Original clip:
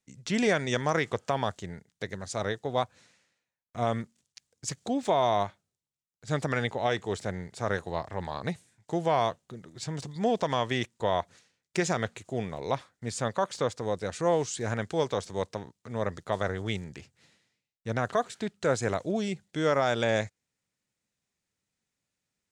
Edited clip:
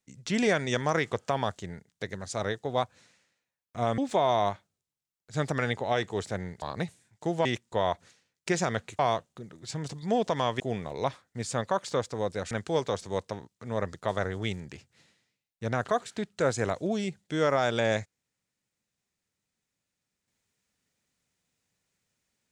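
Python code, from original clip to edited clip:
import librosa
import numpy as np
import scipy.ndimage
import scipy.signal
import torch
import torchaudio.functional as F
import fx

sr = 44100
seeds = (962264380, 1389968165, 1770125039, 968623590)

y = fx.edit(x, sr, fx.cut(start_s=3.98, length_s=0.94),
    fx.cut(start_s=7.56, length_s=0.73),
    fx.move(start_s=10.73, length_s=1.54, to_s=9.12),
    fx.cut(start_s=14.18, length_s=0.57), tone=tone)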